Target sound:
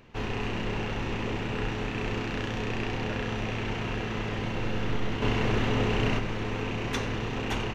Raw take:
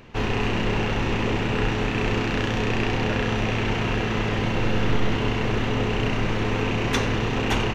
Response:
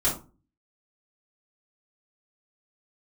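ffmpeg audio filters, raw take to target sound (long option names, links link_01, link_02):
-filter_complex "[0:a]asettb=1/sr,asplit=3[link_01][link_02][link_03];[link_01]atrim=end=5.224[link_04];[link_02]atrim=start=5.22:end=6.19,asetpts=PTS-STARTPTS,afade=type=in:duration=0.004:curve=qsin,afade=type=out:start_time=0.966:duration=0.004:curve=qsin,acontrast=36[link_05];[link_03]atrim=start=6.186[link_06];[link_04][link_05]acrossfade=duration=0.004:curve1=hsin:curve2=qsin[link_07];[link_07][link_06]acrossfade=duration=0.004:curve1=qsin:curve2=hsin,volume=-7.5dB"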